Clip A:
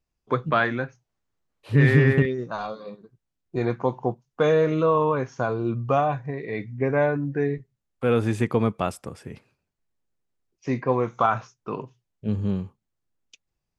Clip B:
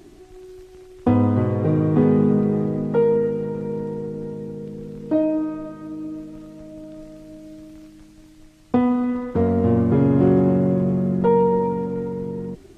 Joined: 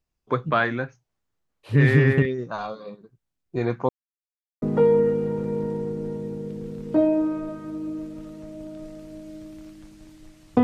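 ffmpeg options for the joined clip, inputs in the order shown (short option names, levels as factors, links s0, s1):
-filter_complex "[0:a]apad=whole_dur=10.63,atrim=end=10.63,asplit=2[s0][s1];[s0]atrim=end=3.89,asetpts=PTS-STARTPTS,afade=t=out:st=3.886:d=0.004:c=hsin[s2];[s1]atrim=start=3.89:end=4.62,asetpts=PTS-STARTPTS,volume=0[s3];[1:a]atrim=start=2.79:end=8.8,asetpts=PTS-STARTPTS,afade=t=in:d=0.004:c=hsin[s4];[s2][s3][s4]concat=n=3:v=0:a=1"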